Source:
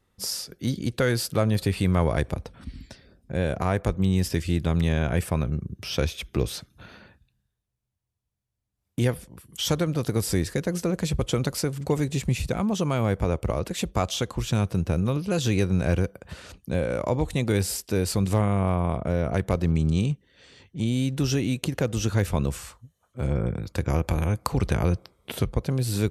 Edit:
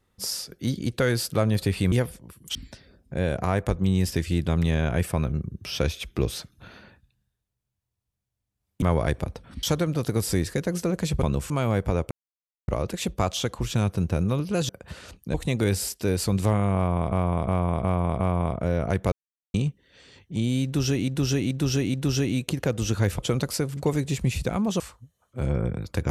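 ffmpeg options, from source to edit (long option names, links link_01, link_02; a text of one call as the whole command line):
ffmpeg -i in.wav -filter_complex "[0:a]asplit=21[link_01][link_02][link_03][link_04][link_05][link_06][link_07][link_08][link_09][link_10][link_11][link_12][link_13][link_14][link_15][link_16][link_17][link_18][link_19][link_20][link_21];[link_01]atrim=end=1.922[link_22];[link_02]atrim=start=8.998:end=9.632[link_23];[link_03]atrim=start=2.728:end=9.002[link_24];[link_04]atrim=start=1.918:end=2.732[link_25];[link_05]atrim=start=9.628:end=11.232[link_26];[link_06]atrim=start=22.338:end=22.612[link_27];[link_07]atrim=start=12.838:end=13.45,asetpts=PTS-STARTPTS,afade=type=out:start_time=0.608:duration=0.004:curve=hsin,apad=pad_dur=0.57[link_28];[link_08]atrim=start=13.45:end=15.462,asetpts=PTS-STARTPTS,afade=type=in:duration=0.004:curve=hsin[link_29];[link_09]atrim=start=16.098:end=16.752[link_30];[link_10]atrim=start=17.218:end=19.002[link_31];[link_11]atrim=start=18.638:end=19.002[link_32];[link_12]atrim=start=18.638:end=19.002[link_33];[link_13]atrim=start=18.638:end=19.002[link_34];[link_14]atrim=start=18.638:end=19.56,asetpts=PTS-STARTPTS,afade=type=out:start_time=0.918:duration=0.004:curve=hsin[link_35];[link_15]atrim=start=19.56:end=19.98,asetpts=PTS-STARTPTS,volume=0[link_36];[link_16]atrim=start=19.98:end=21.522,asetpts=PTS-STARTPTS,afade=type=in:duration=0.004:curve=hsin[link_37];[link_17]atrim=start=21.088:end=21.522[link_38];[link_18]atrim=start=21.088:end=21.522[link_39];[link_19]atrim=start=21.088:end=22.342[link_40];[link_20]atrim=start=11.228:end=12.842[link_41];[link_21]atrim=start=22.608[link_42];[link_22][link_23]acrossfade=duration=0.004:curve1=hsin:curve2=hsin[link_43];[link_43][link_24]acrossfade=duration=0.004:curve1=hsin:curve2=hsin[link_44];[link_44][link_25]acrossfade=duration=0.004:curve1=hsin:curve2=hsin[link_45];[link_45][link_26]acrossfade=duration=0.004:curve1=hsin:curve2=hsin[link_46];[link_46][link_27]acrossfade=duration=0.004:curve1=hsin:curve2=hsin[link_47];[link_28][link_29]concat=n=2:v=0:a=1[link_48];[link_47][link_48]acrossfade=duration=0.004:curve1=hsin:curve2=hsin[link_49];[link_49][link_30]acrossfade=duration=0.004:curve1=hsin:curve2=hsin[link_50];[link_50][link_31]acrossfade=duration=0.004:curve1=hsin:curve2=hsin[link_51];[link_51][link_32]acrossfade=duration=0.004:curve1=hsin:curve2=hsin[link_52];[link_52][link_33]acrossfade=duration=0.004:curve1=hsin:curve2=hsin[link_53];[link_53][link_34]acrossfade=duration=0.004:curve1=hsin:curve2=hsin[link_54];[link_35][link_36][link_37]concat=n=3:v=0:a=1[link_55];[link_54][link_55]acrossfade=duration=0.004:curve1=hsin:curve2=hsin[link_56];[link_56][link_38]acrossfade=duration=0.004:curve1=hsin:curve2=hsin[link_57];[link_57][link_39]acrossfade=duration=0.004:curve1=hsin:curve2=hsin[link_58];[link_58][link_40]acrossfade=duration=0.004:curve1=hsin:curve2=hsin[link_59];[link_59][link_41]acrossfade=duration=0.004:curve1=hsin:curve2=hsin[link_60];[link_60][link_42]acrossfade=duration=0.004:curve1=hsin:curve2=hsin" out.wav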